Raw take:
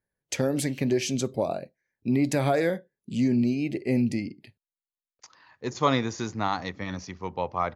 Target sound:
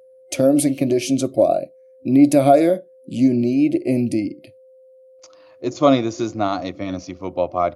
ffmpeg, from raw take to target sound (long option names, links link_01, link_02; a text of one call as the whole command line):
ffmpeg -i in.wav -af "superequalizer=6b=3.16:8b=3.16:9b=0.631:11b=0.398:16b=2.82,aeval=exprs='val(0)+0.00355*sin(2*PI*520*n/s)':channel_layout=same,volume=3dB" out.wav